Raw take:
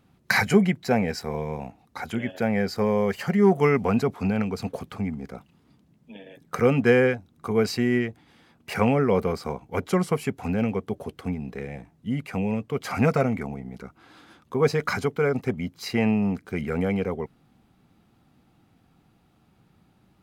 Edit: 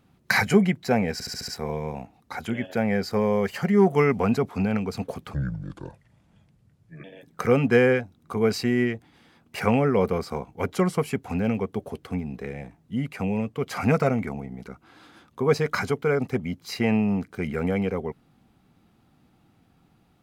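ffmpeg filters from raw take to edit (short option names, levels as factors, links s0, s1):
-filter_complex "[0:a]asplit=8[s0][s1][s2][s3][s4][s5][s6][s7];[s0]atrim=end=1.202[s8];[s1]atrim=start=1.128:end=1.202[s9];[s2]atrim=start=1.128:end=1.202[s10];[s3]atrim=start=1.128:end=1.202[s11];[s4]atrim=start=1.128:end=1.202[s12];[s5]atrim=start=1.128:end=4.994[s13];[s6]atrim=start=4.99:end=6.18,asetpts=PTS-STARTPTS,asetrate=30870,aresample=44100[s14];[s7]atrim=start=6.176[s15];[s8][s9]acrossfade=d=0.004:c1=hsin:c2=hsin[s16];[s16][s10]acrossfade=d=0.004:c1=hsin:c2=hsin[s17];[s17][s11]acrossfade=d=0.004:c1=hsin:c2=hsin[s18];[s18][s12]acrossfade=d=0.004:c1=hsin:c2=hsin[s19];[s19][s13]acrossfade=d=0.004:c1=hsin:c2=hsin[s20];[s20][s14]acrossfade=d=0.004:c1=hsin:c2=hsin[s21];[s21][s15]acrossfade=d=0.004:c1=hsin:c2=hsin"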